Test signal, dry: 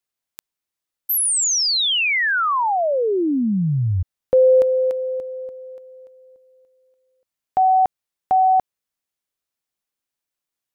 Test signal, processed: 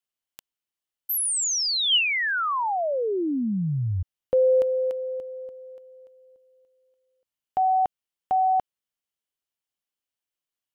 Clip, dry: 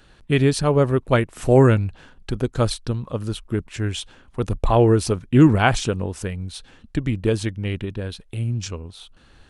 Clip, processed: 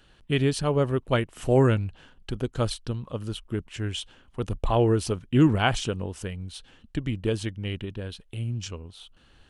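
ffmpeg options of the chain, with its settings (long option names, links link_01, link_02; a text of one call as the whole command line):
ffmpeg -i in.wav -af "equalizer=frequency=3000:width_type=o:width=0.22:gain=7.5,volume=-6dB" out.wav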